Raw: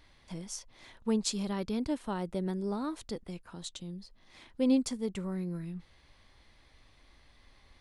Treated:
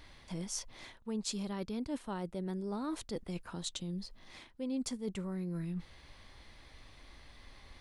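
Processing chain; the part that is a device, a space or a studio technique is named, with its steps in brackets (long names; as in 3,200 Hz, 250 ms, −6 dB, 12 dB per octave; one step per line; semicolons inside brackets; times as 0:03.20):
compression on the reversed sound (reversed playback; downward compressor 6 to 1, threshold −41 dBFS, peak gain reduction 18 dB; reversed playback)
level +5.5 dB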